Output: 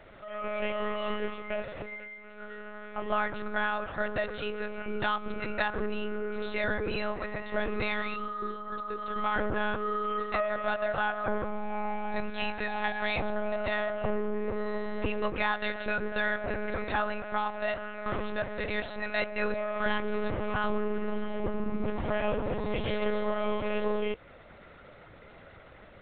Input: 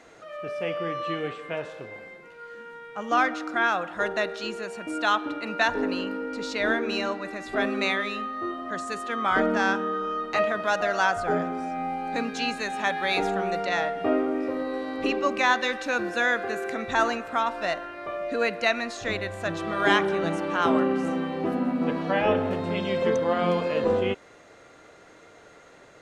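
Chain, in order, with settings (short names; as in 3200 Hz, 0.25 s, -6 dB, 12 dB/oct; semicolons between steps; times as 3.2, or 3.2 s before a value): compressor 2.5:1, threshold -28 dBFS, peak gain reduction 8.5 dB; 8.15–9.16 fixed phaser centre 420 Hz, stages 8; 18.06–19.8 reverse; monotone LPC vocoder at 8 kHz 210 Hz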